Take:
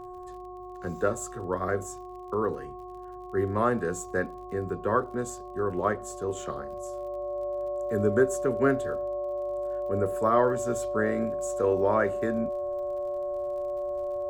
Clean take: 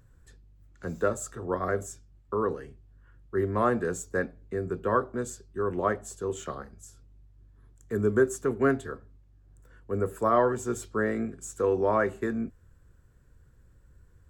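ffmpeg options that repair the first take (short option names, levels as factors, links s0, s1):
-af "adeclick=t=4,bandreject=f=363.5:t=h:w=4,bandreject=f=727:t=h:w=4,bandreject=f=1090.5:t=h:w=4,bandreject=f=580:w=30"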